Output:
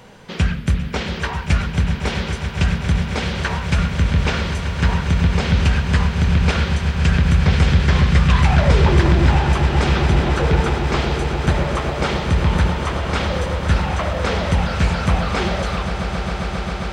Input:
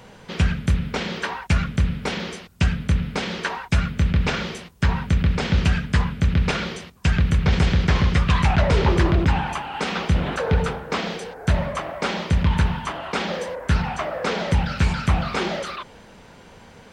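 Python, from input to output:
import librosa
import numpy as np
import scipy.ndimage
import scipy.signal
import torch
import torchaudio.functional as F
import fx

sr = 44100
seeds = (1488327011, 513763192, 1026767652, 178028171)

y = fx.echo_swell(x, sr, ms=134, loudest=8, wet_db=-13.5)
y = F.gain(torch.from_numpy(y), 1.5).numpy()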